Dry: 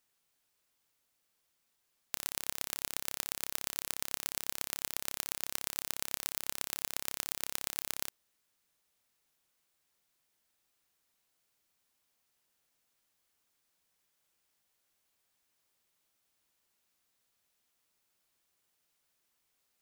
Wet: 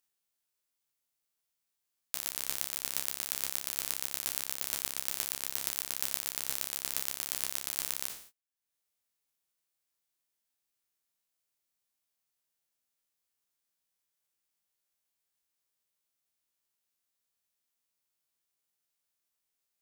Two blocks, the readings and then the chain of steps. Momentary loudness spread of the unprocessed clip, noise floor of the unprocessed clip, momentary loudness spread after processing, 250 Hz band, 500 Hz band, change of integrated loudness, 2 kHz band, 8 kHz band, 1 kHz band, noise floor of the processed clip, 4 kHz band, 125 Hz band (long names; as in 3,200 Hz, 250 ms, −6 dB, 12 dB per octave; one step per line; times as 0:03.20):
1 LU, −79 dBFS, 2 LU, 0.0 dB, 0.0 dB, +3.0 dB, +1.0 dB, +3.5 dB, +0.5 dB, −84 dBFS, +2.5 dB, 0.0 dB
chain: peak hold with a decay on every bin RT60 0.53 s
upward compression, threshold −44 dBFS
noise gate −55 dBFS, range −27 dB
high-shelf EQ 4,500 Hz +6 dB
highs frequency-modulated by the lows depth 0.17 ms
level −2.5 dB